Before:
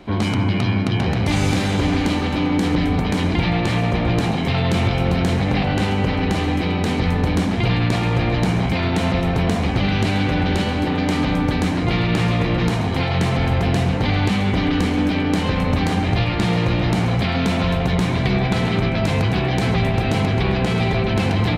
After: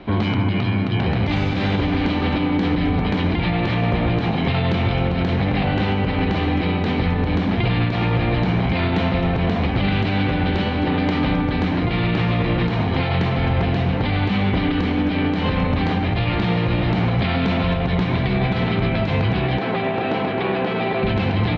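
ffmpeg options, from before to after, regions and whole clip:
ffmpeg -i in.wav -filter_complex "[0:a]asettb=1/sr,asplit=3[link_01][link_02][link_03];[link_01]atrim=end=19.584[link_04];[link_02]atrim=start=19.58:end=21.03,asetpts=PTS-STARTPTS,afade=type=in:duration=0.004:curve=qsin,afade=type=out:start_time=1.446:duration=0.004:curve=qsin,highpass=280,aemphasis=mode=reproduction:type=75kf,bandreject=frequency=2100:width=27[link_05];[link_03]atrim=start=21.026[link_06];[link_04][link_05]acrossfade=duration=0.004:curve1=hsin:curve2=qsin[link_07];[link_07][link_06]acrossfade=duration=0.004:curve1=qsin:curve2=hsin,lowpass=frequency=4000:width=0.5412,lowpass=frequency=4000:width=1.3066,alimiter=limit=-14dB:level=0:latency=1:release=168,volume=3dB" out.wav

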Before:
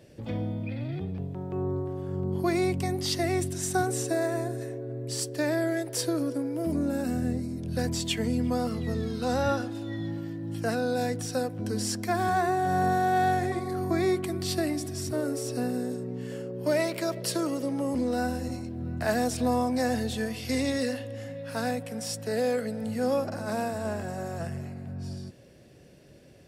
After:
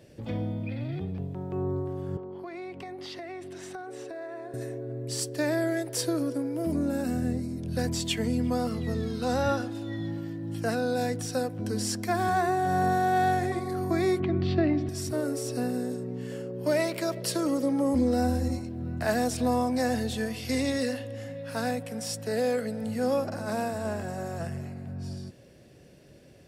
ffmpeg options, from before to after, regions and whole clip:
ffmpeg -i in.wav -filter_complex "[0:a]asettb=1/sr,asplit=3[link_01][link_02][link_03];[link_01]atrim=end=2.174[link_04];[link_02]atrim=start=2.17:end=4.54,asetpts=PTS-STARTPTS,afade=type=in:duration=0.004:curve=qsin,afade=type=out:start_time=2.366:duration=0.004:curve=qsin,acrossover=split=320 3700:gain=0.126 1 0.0891[link_05][link_06][link_07];[link_05][link_06][link_07]amix=inputs=3:normalize=0,acompressor=threshold=-36dB:ratio=6:attack=3.2:release=140:knee=1:detection=peak[link_08];[link_03]atrim=start=4.536[link_09];[link_04][link_08]acrossfade=duration=0.004:curve1=hsin:curve2=qsin[link_10];[link_10][link_09]acrossfade=duration=0.004:curve1=qsin:curve2=hsin,asettb=1/sr,asplit=3[link_11][link_12][link_13];[link_11]atrim=end=14.204[link_14];[link_12]atrim=start=14.2:end=14.89,asetpts=PTS-STARTPTS,afade=type=in:duration=0.004:curve=qsin,afade=type=out:start_time=0.686:duration=0.004:curve=qsin,lowpass=frequency=3400:width=0.5412,lowpass=frequency=3400:width=1.3066,lowshelf=frequency=350:gain=8[link_15];[link_13]atrim=start=14.886[link_16];[link_14][link_15]acrossfade=duration=0.004:curve1=hsin:curve2=qsin[link_17];[link_17][link_16]acrossfade=duration=0.004:curve1=qsin:curve2=hsin,asettb=1/sr,asplit=3[link_18][link_19][link_20];[link_18]atrim=end=17.454[link_21];[link_19]atrim=start=17.45:end=18.59,asetpts=PTS-STARTPTS,afade=type=in:duration=0.004:curve=qsin,afade=type=out:start_time=1.136:duration=0.004:curve=qsin,equalizer=frequency=62:width_type=o:width=1.2:gain=12.5,bandreject=frequency=2800:width=8.8,aecho=1:1:3.7:0.51,atrim=end_sample=50274[link_22];[link_20]atrim=start=18.586[link_23];[link_21][link_22]acrossfade=duration=0.004:curve1=hsin:curve2=qsin[link_24];[link_24][link_23]acrossfade=duration=0.004:curve1=qsin:curve2=hsin" out.wav

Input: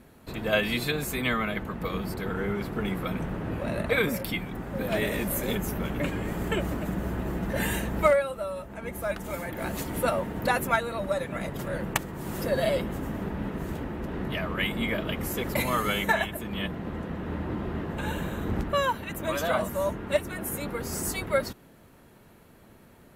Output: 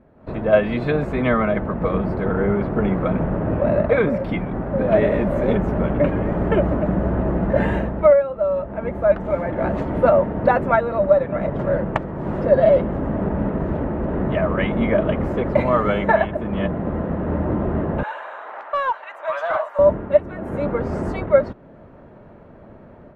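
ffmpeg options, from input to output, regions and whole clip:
ffmpeg -i in.wav -filter_complex "[0:a]asettb=1/sr,asplit=3[link_01][link_02][link_03];[link_01]atrim=end=18.034[link_04];[link_02]atrim=start=18.03:end=19.79,asetpts=PTS-STARTPTS,afade=type=in:duration=0.004:curve=qsin,afade=type=out:start_time=1.756:duration=0.004:curve=qsin,highpass=frequency=800:width=0.5412,highpass=frequency=800:width=1.3066,volume=25.5dB,asoftclip=hard,volume=-25.5dB[link_05];[link_03]atrim=start=19.786[link_06];[link_04][link_05]acrossfade=duration=0.004:curve1=hsin:curve2=qsin[link_07];[link_07][link_06]acrossfade=duration=0.004:curve1=qsin:curve2=hsin,lowpass=1300,equalizer=frequency=600:width=4.8:gain=7.5,dynaudnorm=framelen=150:gausssize=3:maxgain=11dB,volume=-1dB" out.wav

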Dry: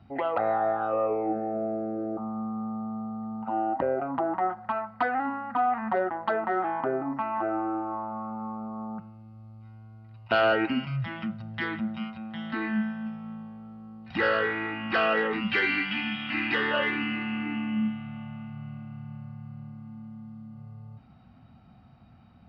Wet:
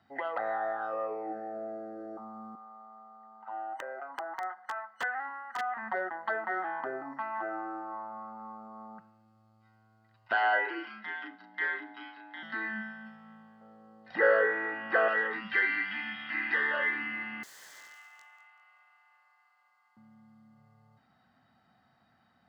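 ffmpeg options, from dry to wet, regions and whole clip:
ffmpeg -i in.wav -filter_complex "[0:a]asettb=1/sr,asplit=3[link_01][link_02][link_03];[link_01]atrim=end=2.554[link_04];[link_02]atrim=start=2.55:end=5.77,asetpts=PTS-STARTPTS,afade=type=in:duration=0.004:curve=qsin,afade=type=out:start_time=3.216:duration=0.004:curve=qsin,highpass=790,aemphasis=mode=reproduction:type=bsi,aeval=exprs='(mod(10*val(0)+1,2)-1)/10':channel_layout=same[link_05];[link_03]atrim=start=5.766[link_06];[link_04][link_05]acrossfade=duration=0.004:curve1=hsin:curve2=qsin[link_07];[link_07][link_06]acrossfade=duration=0.004:curve1=qsin:curve2=hsin,asettb=1/sr,asplit=3[link_08][link_09][link_10];[link_08]atrim=end=10.334[link_11];[link_09]atrim=start=10.33:end=12.43,asetpts=PTS-STARTPTS,afade=type=in:duration=0.004:curve=qsin,afade=type=out:start_time=2.096:duration=0.004:curve=qsin,acrossover=split=230 4700:gain=0.158 1 0.0891[link_12][link_13][link_14];[link_12][link_13][link_14]amix=inputs=3:normalize=0,asplit=2[link_15][link_16];[link_16]adelay=35,volume=-3dB[link_17];[link_15][link_17]amix=inputs=2:normalize=0,atrim=end_sample=92610,afreqshift=78[link_18];[link_10]atrim=start=12.426[link_19];[link_11][link_18]acrossfade=duration=0.004:curve1=hsin:curve2=qsin[link_20];[link_20][link_19]acrossfade=duration=0.004:curve1=qsin:curve2=hsin,asettb=1/sr,asplit=3[link_21][link_22][link_23];[link_21]atrim=end=13.614[link_24];[link_22]atrim=start=13.61:end=15.08,asetpts=PTS-STARTPTS,afade=type=in:duration=0.004:curve=qsin,afade=type=out:start_time=1.466:duration=0.004:curve=qsin,equalizer=frequency=510:width=1.6:gain=13.5,acrossover=split=2800[link_25][link_26];[link_26]acompressor=threshold=-50dB:ratio=4:attack=1:release=60[link_27];[link_25][link_27]amix=inputs=2:normalize=0[link_28];[link_23]atrim=start=15.076[link_29];[link_24][link_28]acrossfade=duration=0.004:curve1=hsin:curve2=qsin[link_30];[link_30][link_29]acrossfade=duration=0.004:curve1=qsin:curve2=hsin,asettb=1/sr,asplit=3[link_31][link_32][link_33];[link_31]atrim=end=17.434[link_34];[link_32]atrim=start=17.43:end=19.97,asetpts=PTS-STARTPTS,afade=type=in:duration=0.004:curve=qsin,afade=type=out:start_time=2.536:duration=0.004:curve=qsin,highpass=frequency=870:width=0.5412,highpass=frequency=870:width=1.3066,aeval=exprs='(mod(112*val(0)+1,2)-1)/112':channel_layout=same,aecho=1:1:192|384|576:0.158|0.0571|0.0205,atrim=end_sample=112014[link_35];[link_33]atrim=start=19.966[link_36];[link_34][link_35]acrossfade=duration=0.004:curve1=hsin:curve2=qsin[link_37];[link_37][link_36]acrossfade=duration=0.004:curve1=qsin:curve2=hsin,superequalizer=11b=2:12b=0.501:14b=1.41:15b=1.78,acrossover=split=2700[link_38][link_39];[link_39]acompressor=threshold=-46dB:ratio=4:attack=1:release=60[link_40];[link_38][link_40]amix=inputs=2:normalize=0,highpass=frequency=810:poles=1,volume=-3.5dB" out.wav

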